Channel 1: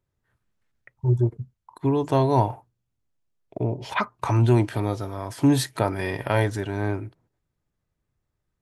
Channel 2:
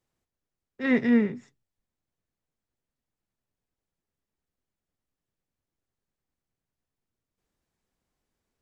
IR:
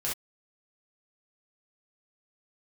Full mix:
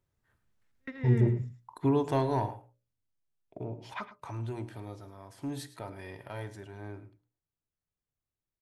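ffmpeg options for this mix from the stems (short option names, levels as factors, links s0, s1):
-filter_complex "[0:a]bandreject=f=60:t=h:w=6,bandreject=f=120:t=h:w=6,bandreject=f=180:t=h:w=6,bandreject=f=240:t=h:w=6,bandreject=f=300:t=h:w=6,bandreject=f=360:t=h:w=6,bandreject=f=420:t=h:w=6,bandreject=f=480:t=h:w=6,bandreject=f=540:t=h:w=6,bandreject=f=600:t=h:w=6,asoftclip=type=tanh:threshold=0.299,volume=0.841,afade=t=out:st=1.67:d=0.74:silence=0.398107,afade=t=out:st=3.45:d=0.75:silence=0.421697,asplit=4[s0][s1][s2][s3];[s1]volume=0.0841[s4];[s2]volume=0.188[s5];[1:a]volume=0.251,asplit=2[s6][s7];[s7]volume=0.422[s8];[s3]apad=whole_len=379744[s9];[s6][s9]sidechaingate=range=0.0141:threshold=0.00251:ratio=16:detection=peak[s10];[2:a]atrim=start_sample=2205[s11];[s4][s11]afir=irnorm=-1:irlink=0[s12];[s5][s8]amix=inputs=2:normalize=0,aecho=0:1:107:1[s13];[s0][s10][s12][s13]amix=inputs=4:normalize=0"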